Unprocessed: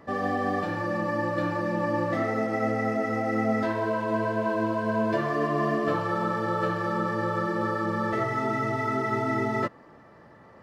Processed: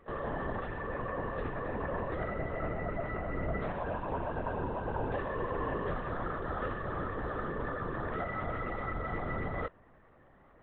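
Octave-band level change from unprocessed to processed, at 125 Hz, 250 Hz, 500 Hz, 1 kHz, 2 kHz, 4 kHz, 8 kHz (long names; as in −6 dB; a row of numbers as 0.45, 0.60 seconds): −6.0 dB, −12.5 dB, −9.0 dB, −9.0 dB, −9.0 dB, −11.5 dB, can't be measured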